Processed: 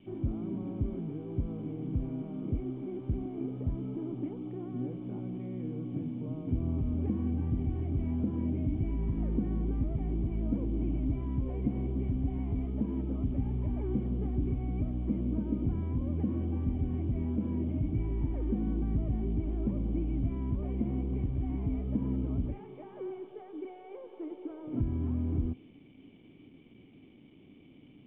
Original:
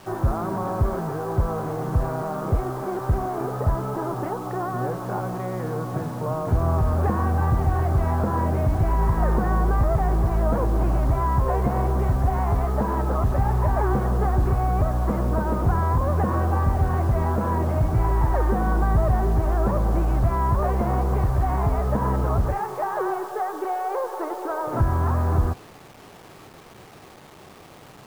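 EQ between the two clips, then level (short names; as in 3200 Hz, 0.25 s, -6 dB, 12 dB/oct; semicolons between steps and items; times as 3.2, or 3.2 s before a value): vocal tract filter i; +1.5 dB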